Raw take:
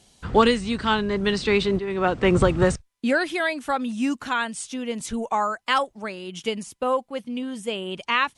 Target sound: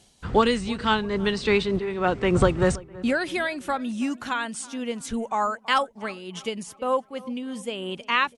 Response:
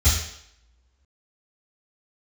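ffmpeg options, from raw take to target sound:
-filter_complex "[0:a]tremolo=f=3.3:d=0.36,asplit=2[link_01][link_02];[link_02]adelay=327,lowpass=frequency=2000:poles=1,volume=-20dB,asplit=2[link_03][link_04];[link_04]adelay=327,lowpass=frequency=2000:poles=1,volume=0.51,asplit=2[link_05][link_06];[link_06]adelay=327,lowpass=frequency=2000:poles=1,volume=0.51,asplit=2[link_07][link_08];[link_08]adelay=327,lowpass=frequency=2000:poles=1,volume=0.51[link_09];[link_01][link_03][link_05][link_07][link_09]amix=inputs=5:normalize=0"

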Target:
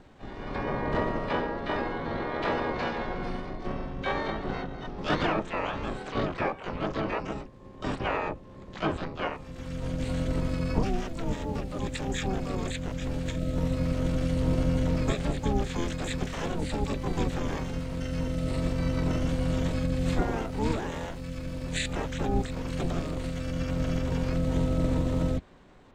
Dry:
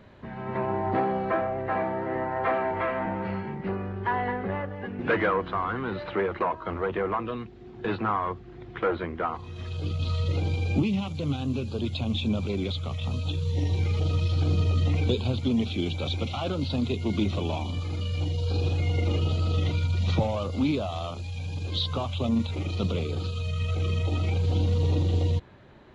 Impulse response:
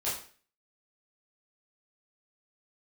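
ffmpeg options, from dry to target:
-filter_complex "[0:a]aeval=exprs='val(0)*sin(2*PI*170*n/s)':channel_layout=same,asplit=4[link_01][link_02][link_03][link_04];[link_02]asetrate=22050,aresample=44100,atempo=2,volume=-1dB[link_05];[link_03]asetrate=29433,aresample=44100,atempo=1.49831,volume=-2dB[link_06];[link_04]asetrate=88200,aresample=44100,atempo=0.5,volume=-3dB[link_07];[link_01][link_05][link_06][link_07]amix=inputs=4:normalize=0,volume=-4dB"

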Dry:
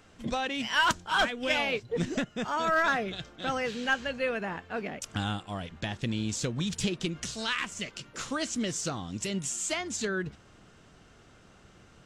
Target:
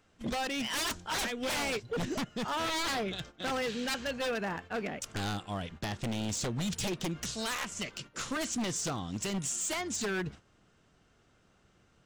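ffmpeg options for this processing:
ffmpeg -i in.wav -af "agate=range=-10dB:threshold=-46dB:ratio=16:detection=peak,aeval=exprs='0.0422*(abs(mod(val(0)/0.0422+3,4)-2)-1)':channel_layout=same" out.wav

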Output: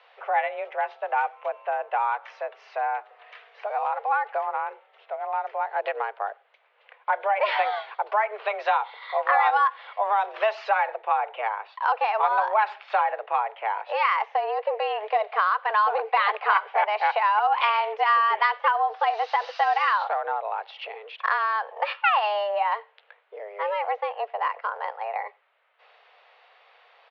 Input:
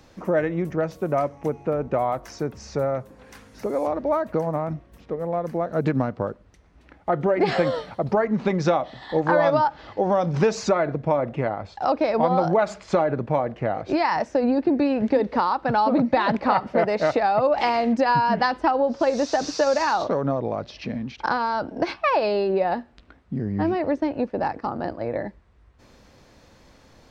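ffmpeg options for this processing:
ffmpeg -i in.wav -filter_complex "[0:a]aemphasis=mode=production:type=riaa,highpass=frequency=270:width_type=q:width=0.5412,highpass=frequency=270:width_type=q:width=1.307,lowpass=frequency=3100:width_type=q:width=0.5176,lowpass=frequency=3100:width_type=q:width=0.7071,lowpass=frequency=3100:width_type=q:width=1.932,afreqshift=210,asplit=2[link_01][link_02];[link_02]adelay=93.29,volume=-30dB,highshelf=frequency=4000:gain=-2.1[link_03];[link_01][link_03]amix=inputs=2:normalize=0" out.wav

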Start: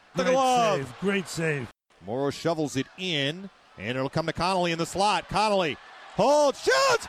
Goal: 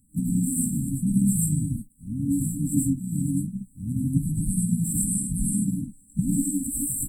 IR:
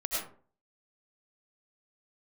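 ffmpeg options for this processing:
-filter_complex "[1:a]atrim=start_sample=2205,afade=type=out:start_time=0.22:duration=0.01,atrim=end_sample=10143[link_01];[0:a][link_01]afir=irnorm=-1:irlink=0,asplit=3[link_02][link_03][link_04];[link_03]asetrate=29433,aresample=44100,atempo=1.49831,volume=-12dB[link_05];[link_04]asetrate=52444,aresample=44100,atempo=0.840896,volume=-11dB[link_06];[link_02][link_05][link_06]amix=inputs=3:normalize=0,afftfilt=real='re*(1-between(b*sr/4096,300,7600))':imag='im*(1-between(b*sr/4096,300,7600))':win_size=4096:overlap=0.75,bass=frequency=250:gain=5,treble=frequency=4000:gain=10,volume=2.5dB"

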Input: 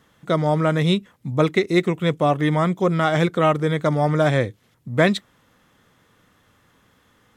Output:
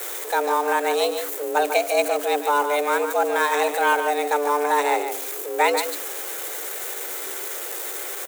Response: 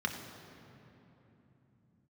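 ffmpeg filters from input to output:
-filter_complex "[0:a]aeval=exprs='val(0)+0.5*0.0376*sgn(val(0))':channel_layout=same,lowshelf=frequency=170:gain=-6,acrossover=split=210[link_01][link_02];[link_01]aeval=exprs='0.112*(cos(1*acos(clip(val(0)/0.112,-1,1)))-cos(1*PI/2))+0.00447*(cos(3*acos(clip(val(0)/0.112,-1,1)))-cos(3*PI/2))+0.0178*(cos(5*acos(clip(val(0)/0.112,-1,1)))-cos(5*PI/2))+0.0178*(cos(6*acos(clip(val(0)/0.112,-1,1)))-cos(6*PI/2))':channel_layout=same[link_03];[link_02]aexciter=amount=4.1:drive=3.2:freq=6300[link_04];[link_03][link_04]amix=inputs=2:normalize=0,atempo=0.89,afreqshift=290,aecho=1:1:146:0.398,volume=-2.5dB"

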